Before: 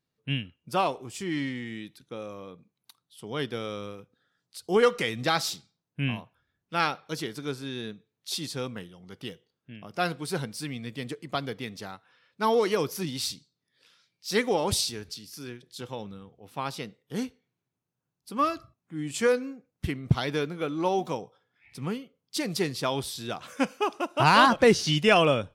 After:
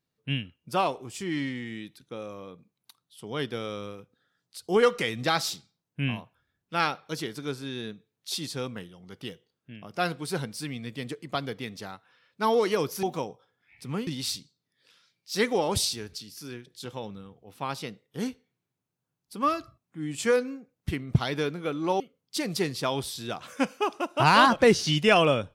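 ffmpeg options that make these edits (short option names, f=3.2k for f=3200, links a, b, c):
-filter_complex "[0:a]asplit=4[a][b][c][d];[a]atrim=end=13.032[e];[b]atrim=start=20.958:end=22.002[f];[c]atrim=start=13.028:end=20.962[g];[d]atrim=start=21.998[h];[e][f]acrossfade=d=0.004:c1=hsin:c2=hsin[i];[i][g]acrossfade=d=0.004:c1=hsin:c2=hsin[j];[j][h]acrossfade=d=0.004:c1=hsin:c2=hsin"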